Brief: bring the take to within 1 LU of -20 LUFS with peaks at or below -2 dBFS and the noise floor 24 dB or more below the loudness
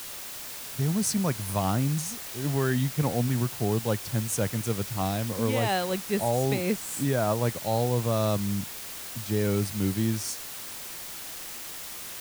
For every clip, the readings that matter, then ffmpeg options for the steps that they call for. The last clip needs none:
noise floor -39 dBFS; noise floor target -53 dBFS; loudness -28.5 LUFS; peak -12.5 dBFS; loudness target -20.0 LUFS
-> -af "afftdn=nr=14:nf=-39"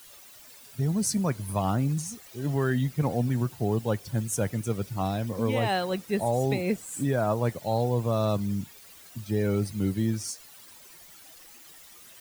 noise floor -51 dBFS; noise floor target -52 dBFS
-> -af "afftdn=nr=6:nf=-51"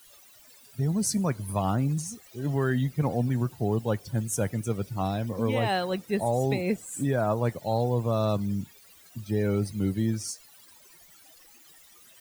noise floor -55 dBFS; loudness -28.0 LUFS; peak -13.0 dBFS; loudness target -20.0 LUFS
-> -af "volume=8dB"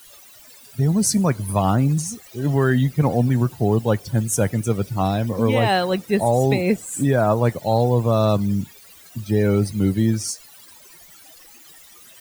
loudness -20.0 LUFS; peak -5.0 dBFS; noise floor -47 dBFS

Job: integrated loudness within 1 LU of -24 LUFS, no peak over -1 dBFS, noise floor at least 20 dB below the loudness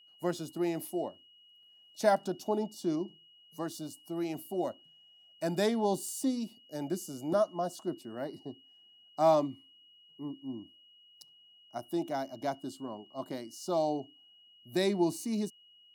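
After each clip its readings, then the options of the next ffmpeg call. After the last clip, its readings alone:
steady tone 2900 Hz; tone level -58 dBFS; loudness -34.0 LUFS; peak -13.5 dBFS; loudness target -24.0 LUFS
-> -af "bandreject=f=2.9k:w=30"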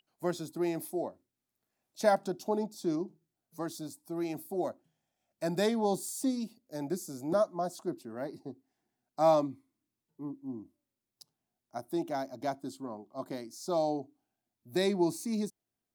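steady tone none; loudness -34.0 LUFS; peak -13.5 dBFS; loudness target -24.0 LUFS
-> -af "volume=10dB"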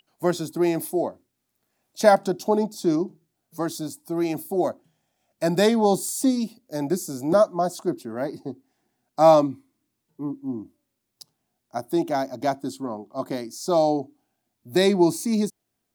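loudness -24.0 LUFS; peak -3.5 dBFS; noise floor -78 dBFS

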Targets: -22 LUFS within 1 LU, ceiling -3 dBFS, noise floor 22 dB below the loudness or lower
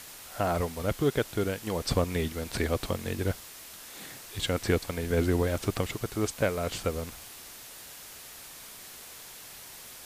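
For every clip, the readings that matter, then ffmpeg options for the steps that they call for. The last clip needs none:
noise floor -47 dBFS; noise floor target -53 dBFS; loudness -30.5 LUFS; peak -12.5 dBFS; loudness target -22.0 LUFS
-> -af "afftdn=nr=6:nf=-47"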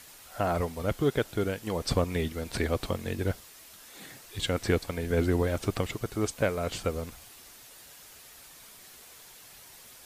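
noise floor -51 dBFS; noise floor target -53 dBFS
-> -af "afftdn=nr=6:nf=-51"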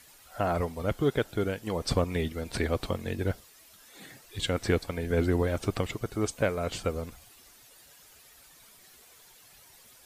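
noise floor -56 dBFS; loudness -30.5 LUFS; peak -12.5 dBFS; loudness target -22.0 LUFS
-> -af "volume=8.5dB"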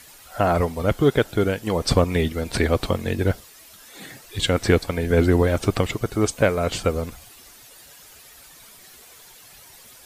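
loudness -22.0 LUFS; peak -4.0 dBFS; noise floor -48 dBFS

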